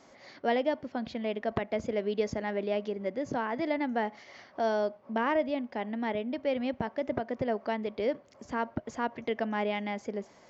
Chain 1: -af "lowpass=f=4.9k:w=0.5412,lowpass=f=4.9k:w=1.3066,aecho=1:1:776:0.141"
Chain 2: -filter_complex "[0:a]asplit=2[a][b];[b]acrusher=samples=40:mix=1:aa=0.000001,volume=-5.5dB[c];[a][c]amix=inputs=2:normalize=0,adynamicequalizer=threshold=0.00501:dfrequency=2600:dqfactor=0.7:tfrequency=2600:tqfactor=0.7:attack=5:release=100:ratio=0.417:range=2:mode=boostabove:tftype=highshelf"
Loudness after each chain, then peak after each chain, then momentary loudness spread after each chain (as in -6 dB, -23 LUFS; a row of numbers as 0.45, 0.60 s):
-32.5, -30.5 LUFS; -17.0, -11.0 dBFS; 6, 6 LU